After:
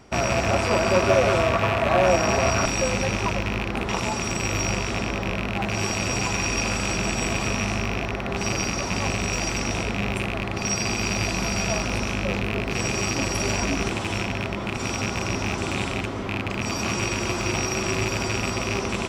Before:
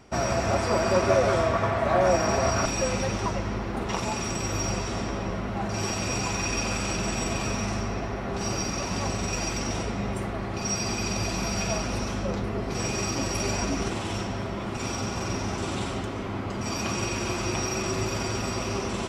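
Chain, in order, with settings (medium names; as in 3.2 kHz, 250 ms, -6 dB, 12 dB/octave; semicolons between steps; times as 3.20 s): rattle on loud lows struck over -30 dBFS, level -18 dBFS; trim +2.5 dB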